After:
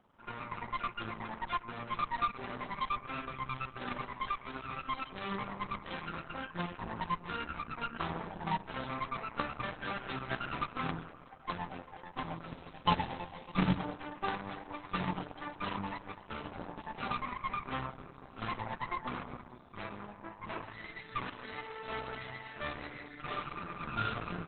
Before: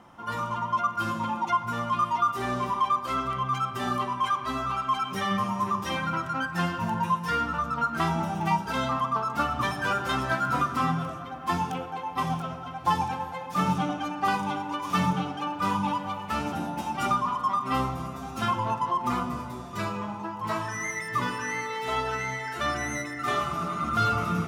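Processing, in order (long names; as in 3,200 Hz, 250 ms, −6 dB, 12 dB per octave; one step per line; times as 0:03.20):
0:12.46–0:13.78: each half-wave held at its own peak
harmonic generator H 3 −12 dB, 5 −42 dB, 6 −27 dB, 8 −20 dB, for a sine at −11 dBFS
level −2 dB
Opus 8 kbit/s 48,000 Hz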